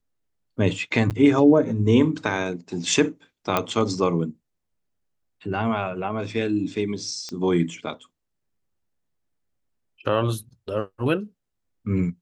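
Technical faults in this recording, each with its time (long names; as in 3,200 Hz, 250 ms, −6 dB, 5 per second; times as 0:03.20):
0:01.10–0:01.11: drop-out 8.6 ms
0:03.57: click −7 dBFS
0:07.29: click −20 dBFS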